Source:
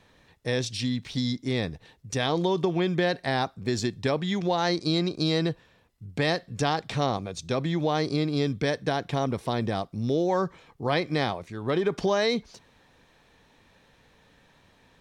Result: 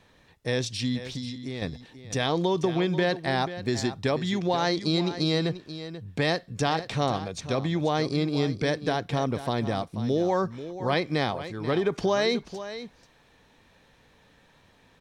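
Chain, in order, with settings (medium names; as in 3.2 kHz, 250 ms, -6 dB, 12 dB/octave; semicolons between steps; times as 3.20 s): 0.97–1.62 s: compression 3:1, threshold -34 dBFS, peak gain reduction 8.5 dB; delay 486 ms -12.5 dB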